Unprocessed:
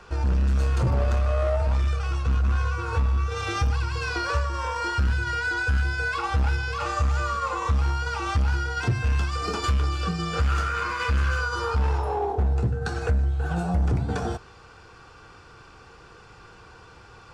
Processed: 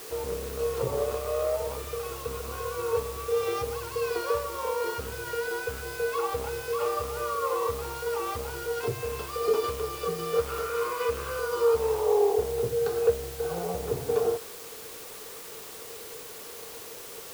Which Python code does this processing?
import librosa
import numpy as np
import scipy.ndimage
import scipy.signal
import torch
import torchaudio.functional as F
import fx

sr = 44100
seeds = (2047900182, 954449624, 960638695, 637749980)

y = fx.cabinet(x, sr, low_hz=140.0, low_slope=12, high_hz=6000.0, hz=(200.0, 320.0, 450.0, 1100.0, 1600.0), db=(-9, -9, 10, 5, -6))
y = fx.quant_dither(y, sr, seeds[0], bits=6, dither='triangular')
y = fx.peak_eq(y, sr, hz=440.0, db=10.5, octaves=0.92)
y = y * 10.0 ** (-7.5 / 20.0)